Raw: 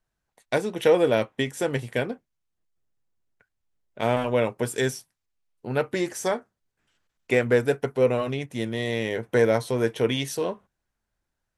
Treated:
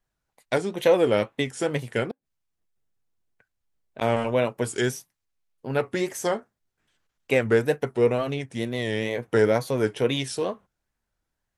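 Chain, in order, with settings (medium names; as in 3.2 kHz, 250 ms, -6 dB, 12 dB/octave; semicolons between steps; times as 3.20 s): 2.08–4.02 s: inverted gate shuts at -22 dBFS, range -34 dB; wow and flutter 130 cents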